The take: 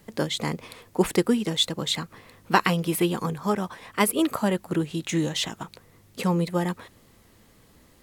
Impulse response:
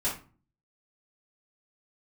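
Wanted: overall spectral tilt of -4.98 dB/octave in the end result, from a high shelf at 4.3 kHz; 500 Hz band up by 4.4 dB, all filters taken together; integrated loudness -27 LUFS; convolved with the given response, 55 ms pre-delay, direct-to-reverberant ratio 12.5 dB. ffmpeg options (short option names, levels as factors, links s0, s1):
-filter_complex "[0:a]equalizer=f=500:t=o:g=6,highshelf=f=4300:g=-8.5,asplit=2[s0][s1];[1:a]atrim=start_sample=2205,adelay=55[s2];[s1][s2]afir=irnorm=-1:irlink=0,volume=0.106[s3];[s0][s3]amix=inputs=2:normalize=0,volume=0.708"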